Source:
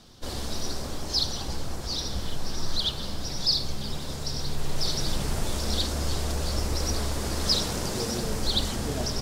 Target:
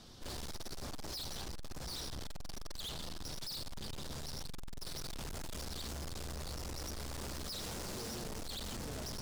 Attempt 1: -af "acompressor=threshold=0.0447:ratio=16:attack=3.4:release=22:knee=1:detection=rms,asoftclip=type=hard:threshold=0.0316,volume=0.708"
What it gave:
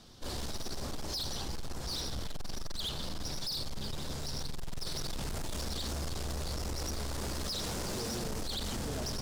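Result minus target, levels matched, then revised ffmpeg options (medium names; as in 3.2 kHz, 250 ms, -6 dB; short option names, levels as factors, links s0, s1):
hard clipper: distortion -5 dB
-af "acompressor=threshold=0.0447:ratio=16:attack=3.4:release=22:knee=1:detection=rms,asoftclip=type=hard:threshold=0.0126,volume=0.708"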